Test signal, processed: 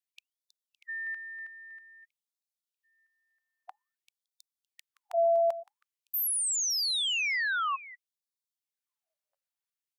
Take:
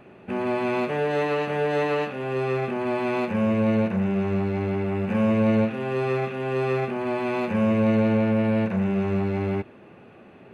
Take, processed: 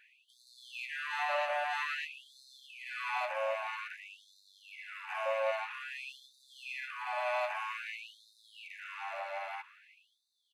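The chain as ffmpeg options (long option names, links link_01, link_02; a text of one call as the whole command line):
ffmpeg -i in.wav -af "aecho=1:1:563:0.141,afftfilt=real='re*gte(b*sr/1024,520*pow(3600/520,0.5+0.5*sin(2*PI*0.51*pts/sr)))':imag='im*gte(b*sr/1024,520*pow(3600/520,0.5+0.5*sin(2*PI*0.51*pts/sr)))':win_size=1024:overlap=0.75,volume=-3dB" out.wav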